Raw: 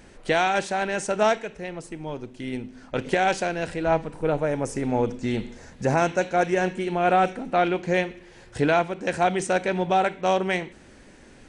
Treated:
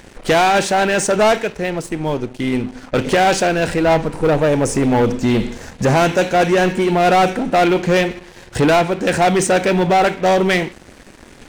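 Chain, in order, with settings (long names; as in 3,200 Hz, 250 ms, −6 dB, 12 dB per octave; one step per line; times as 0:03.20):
leveller curve on the samples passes 3
level +2 dB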